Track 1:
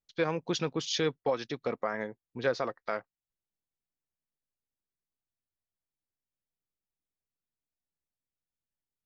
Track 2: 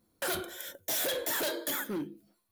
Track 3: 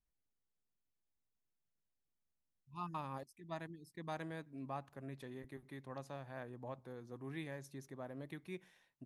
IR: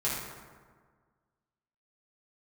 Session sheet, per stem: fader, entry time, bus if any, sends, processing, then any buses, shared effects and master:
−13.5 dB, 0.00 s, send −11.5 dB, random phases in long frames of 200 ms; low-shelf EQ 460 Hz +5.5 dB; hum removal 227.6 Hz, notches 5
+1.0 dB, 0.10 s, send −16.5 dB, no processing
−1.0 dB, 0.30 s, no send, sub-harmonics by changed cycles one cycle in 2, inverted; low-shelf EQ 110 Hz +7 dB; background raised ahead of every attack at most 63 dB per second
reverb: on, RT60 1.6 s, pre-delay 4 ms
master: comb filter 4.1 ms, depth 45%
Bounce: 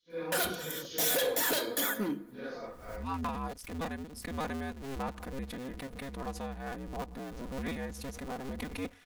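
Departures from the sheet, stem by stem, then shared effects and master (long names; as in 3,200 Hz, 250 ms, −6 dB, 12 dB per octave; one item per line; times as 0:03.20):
stem 3 −1.0 dB → +6.0 dB
reverb return −9.5 dB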